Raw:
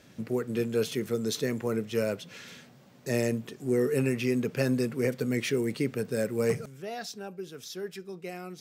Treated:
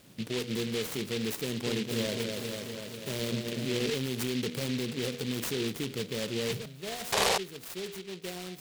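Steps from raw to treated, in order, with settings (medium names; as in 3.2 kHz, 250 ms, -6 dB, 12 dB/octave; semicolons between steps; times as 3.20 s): de-hum 80.35 Hz, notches 9; peak limiter -24 dBFS, peak gain reduction 10 dB; 1.40–3.90 s: delay with an opening low-pass 245 ms, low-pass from 750 Hz, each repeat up 2 oct, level -3 dB; 7.12–7.38 s: painted sound noise 390–1200 Hz -26 dBFS; delay time shaken by noise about 3 kHz, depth 0.19 ms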